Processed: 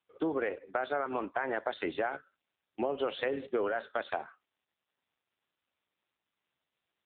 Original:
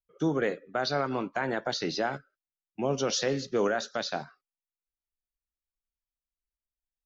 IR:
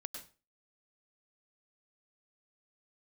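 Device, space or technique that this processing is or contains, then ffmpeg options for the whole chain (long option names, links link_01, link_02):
voicemail: -filter_complex "[0:a]asplit=3[link_01][link_02][link_03];[link_01]afade=type=out:start_time=1.94:duration=0.02[link_04];[link_02]highshelf=frequency=3700:gain=2,afade=type=in:start_time=1.94:duration=0.02,afade=type=out:start_time=3:duration=0.02[link_05];[link_03]afade=type=in:start_time=3:duration=0.02[link_06];[link_04][link_05][link_06]amix=inputs=3:normalize=0,highpass=360,lowpass=3300,acompressor=threshold=-32dB:ratio=8,volume=5dB" -ar 8000 -c:a libopencore_amrnb -b:a 6700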